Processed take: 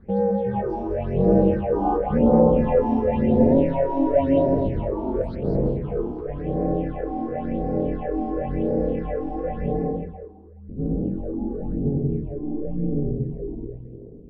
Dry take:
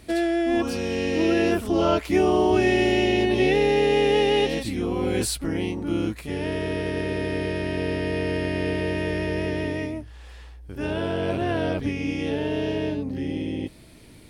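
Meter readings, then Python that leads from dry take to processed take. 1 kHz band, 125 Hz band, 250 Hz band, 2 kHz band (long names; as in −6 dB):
+1.0 dB, +4.0 dB, +2.0 dB, −16.5 dB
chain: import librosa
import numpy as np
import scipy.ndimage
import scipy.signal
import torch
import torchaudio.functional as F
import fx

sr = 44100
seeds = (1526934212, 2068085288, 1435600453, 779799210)

p1 = fx.env_lowpass(x, sr, base_hz=2700.0, full_db=-16.5)
p2 = scipy.signal.sosfilt(scipy.signal.butter(2, 47.0, 'highpass', fs=sr, output='sos'), p1)
p3 = fx.dynamic_eq(p2, sr, hz=1200.0, q=1.2, threshold_db=-40.0, ratio=4.0, max_db=-5)
p4 = p3 * np.sin(2.0 * np.pi * 140.0 * np.arange(len(p3)) / sr)
p5 = p4 + fx.echo_split(p4, sr, split_hz=430.0, low_ms=97, high_ms=213, feedback_pct=52, wet_db=-4, dry=0)
p6 = fx.phaser_stages(p5, sr, stages=6, low_hz=130.0, high_hz=2900.0, hz=0.94, feedback_pct=45)
p7 = fx.filter_sweep_lowpass(p6, sr, from_hz=900.0, to_hz=310.0, start_s=9.9, end_s=10.56, q=1.2)
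y = F.gain(torch.from_numpy(p7), 4.0).numpy()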